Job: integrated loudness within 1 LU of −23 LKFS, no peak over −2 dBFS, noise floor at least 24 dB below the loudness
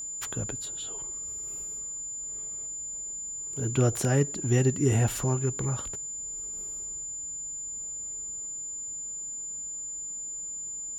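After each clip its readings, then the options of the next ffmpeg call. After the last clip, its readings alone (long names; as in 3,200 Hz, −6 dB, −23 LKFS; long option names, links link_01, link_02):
interfering tone 7,100 Hz; level of the tone −34 dBFS; integrated loudness −30.5 LKFS; sample peak −12.5 dBFS; target loudness −23.0 LKFS
→ -af "bandreject=frequency=7100:width=30"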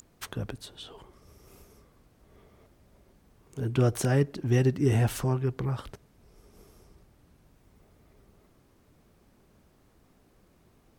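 interfering tone none found; integrated loudness −28.0 LKFS; sample peak −13.0 dBFS; target loudness −23.0 LKFS
→ -af "volume=5dB"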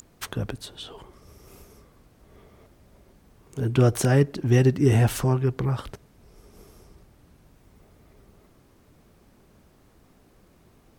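integrated loudness −23.0 LKFS; sample peak −8.0 dBFS; background noise floor −58 dBFS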